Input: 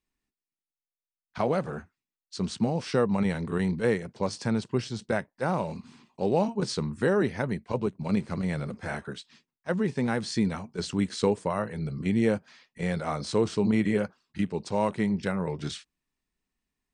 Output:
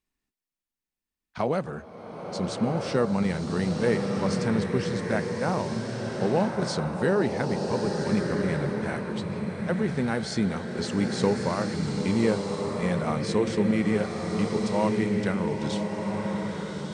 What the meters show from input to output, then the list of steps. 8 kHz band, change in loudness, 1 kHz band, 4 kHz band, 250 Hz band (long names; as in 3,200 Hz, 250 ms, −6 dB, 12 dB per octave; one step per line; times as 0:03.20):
+2.5 dB, +2.0 dB, +2.0 dB, +2.0 dB, +2.5 dB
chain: slow-attack reverb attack 1,350 ms, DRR 1.5 dB